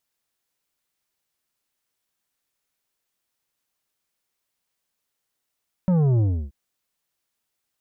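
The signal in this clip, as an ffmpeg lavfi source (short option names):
-f lavfi -i "aevalsrc='0.141*clip((0.63-t)/0.31,0,1)*tanh(2.82*sin(2*PI*190*0.63/log(65/190)*(exp(log(65/190)*t/0.63)-1)))/tanh(2.82)':d=0.63:s=44100"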